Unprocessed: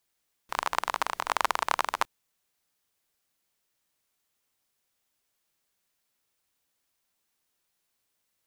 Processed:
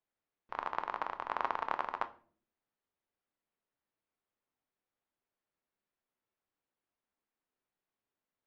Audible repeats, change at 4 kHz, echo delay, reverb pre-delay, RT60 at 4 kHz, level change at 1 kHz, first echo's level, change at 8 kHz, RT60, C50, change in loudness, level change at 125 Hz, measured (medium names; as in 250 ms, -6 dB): no echo, -17.5 dB, no echo, 4 ms, 0.35 s, -7.0 dB, no echo, under -30 dB, 0.50 s, 17.0 dB, -8.0 dB, no reading